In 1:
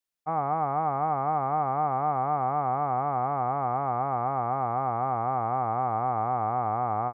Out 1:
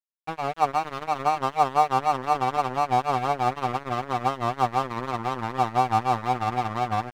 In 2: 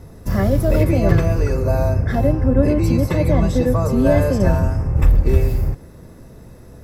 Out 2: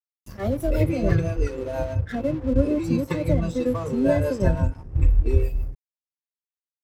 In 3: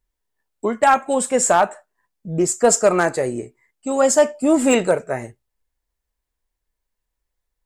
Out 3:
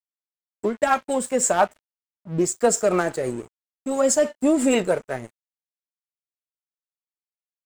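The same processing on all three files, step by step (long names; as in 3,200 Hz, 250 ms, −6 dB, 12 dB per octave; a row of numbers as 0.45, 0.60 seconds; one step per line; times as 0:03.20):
rotating-speaker cabinet horn 6 Hz
noise reduction from a noise print of the clip's start 14 dB
dead-zone distortion −39.5 dBFS
normalise the peak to −6 dBFS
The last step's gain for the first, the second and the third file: +11.5, −2.5, −0.5 decibels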